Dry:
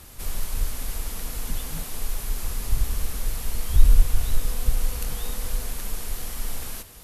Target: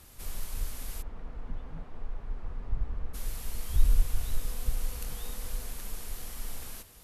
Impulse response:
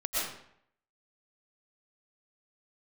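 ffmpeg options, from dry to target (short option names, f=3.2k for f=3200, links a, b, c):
-filter_complex "[0:a]asplit=3[a][b][c];[a]afade=t=out:st=1.01:d=0.02[d];[b]lowpass=1.3k,afade=t=in:st=1.01:d=0.02,afade=t=out:st=3.13:d=0.02[e];[c]afade=t=in:st=3.13:d=0.02[f];[d][e][f]amix=inputs=3:normalize=0,volume=-8dB"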